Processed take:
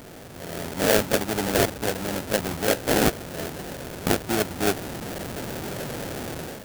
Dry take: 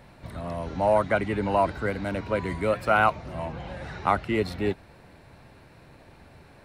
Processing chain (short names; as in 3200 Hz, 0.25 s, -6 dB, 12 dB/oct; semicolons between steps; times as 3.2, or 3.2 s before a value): delta modulation 64 kbps, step -29.5 dBFS; sample-rate reducer 1100 Hz, jitter 20%; low shelf 100 Hz -10.5 dB; AGC gain up to 11 dB; high shelf 7500 Hz +8 dB; gain -6 dB